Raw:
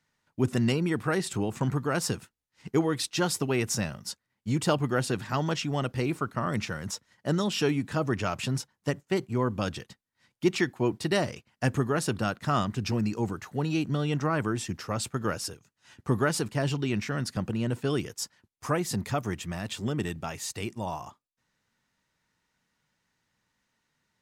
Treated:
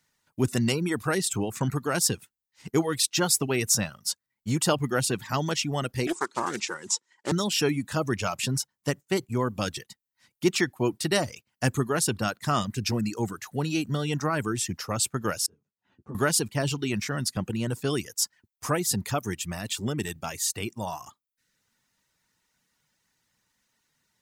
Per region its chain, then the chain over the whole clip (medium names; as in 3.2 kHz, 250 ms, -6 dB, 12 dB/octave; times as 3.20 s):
6.07–7.32 s: block-companded coder 5-bit + cabinet simulation 340–8400 Hz, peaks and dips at 360 Hz +10 dB, 650 Hz -7 dB, 930 Hz +7 dB, 7.4 kHz +6 dB + loudspeaker Doppler distortion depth 0.29 ms
15.46–16.15 s: compression 1.5:1, threshold -43 dBFS + band-pass filter 250 Hz, Q 0.65 + three-phase chorus
whole clip: reverb removal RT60 0.57 s; treble shelf 5.1 kHz +11.5 dB; trim +1 dB